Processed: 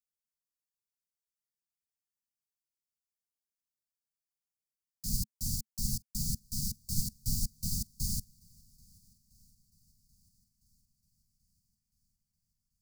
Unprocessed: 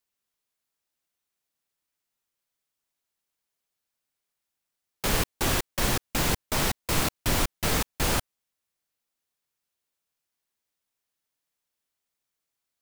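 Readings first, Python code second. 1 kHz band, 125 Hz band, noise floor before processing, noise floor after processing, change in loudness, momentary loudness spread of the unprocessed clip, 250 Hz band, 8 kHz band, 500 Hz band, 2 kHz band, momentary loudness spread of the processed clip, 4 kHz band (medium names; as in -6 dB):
under -40 dB, -5.5 dB, -85 dBFS, under -85 dBFS, -8.0 dB, 1 LU, -9.5 dB, -5.5 dB, under -40 dB, under -40 dB, 2 LU, -11.0 dB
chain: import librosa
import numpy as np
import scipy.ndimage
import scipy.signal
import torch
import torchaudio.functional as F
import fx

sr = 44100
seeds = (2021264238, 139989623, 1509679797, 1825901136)

y = scipy.signal.sosfilt(scipy.signal.cheby1(5, 1.0, [220.0, 4600.0], 'bandstop', fs=sr, output='sos'), x)
y = fx.echo_swing(y, sr, ms=1307, ratio=1.5, feedback_pct=42, wet_db=-22.5)
y = fx.upward_expand(y, sr, threshold_db=-38.0, expansion=1.5)
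y = F.gain(torch.from_numpy(y), -2.5).numpy()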